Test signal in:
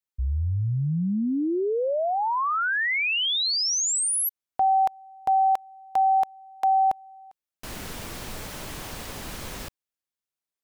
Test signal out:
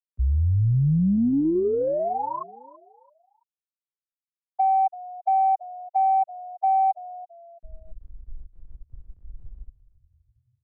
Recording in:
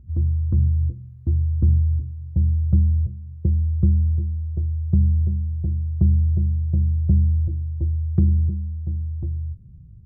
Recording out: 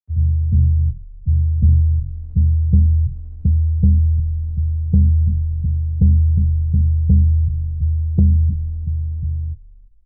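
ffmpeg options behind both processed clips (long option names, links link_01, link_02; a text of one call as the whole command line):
ffmpeg -i in.wav -filter_complex "[0:a]aemphasis=mode=reproduction:type=riaa,afftfilt=real='re*gte(hypot(re,im),0.794)':imag='im*gte(hypot(re,im),0.794)':win_size=1024:overlap=0.75,lowshelf=frequency=260:gain=-8.5,asplit=4[link_01][link_02][link_03][link_04];[link_02]adelay=334,afreqshift=-44,volume=-18.5dB[link_05];[link_03]adelay=668,afreqshift=-88,volume=-27.6dB[link_06];[link_04]adelay=1002,afreqshift=-132,volume=-36.7dB[link_07];[link_01][link_05][link_06][link_07]amix=inputs=4:normalize=0,acrossover=split=110[link_08][link_09];[link_09]acontrast=88[link_10];[link_08][link_10]amix=inputs=2:normalize=0,volume=-4.5dB" out.wav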